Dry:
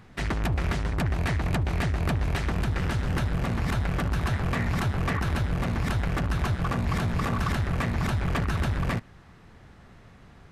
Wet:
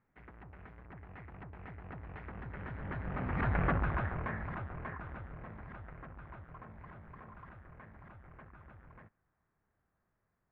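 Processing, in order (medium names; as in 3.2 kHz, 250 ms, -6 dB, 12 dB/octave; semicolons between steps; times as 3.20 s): Doppler pass-by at 3.64 s, 28 m/s, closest 6.6 m; low-pass 2 kHz 24 dB/octave; bass shelf 410 Hz -6.5 dB; trim +2 dB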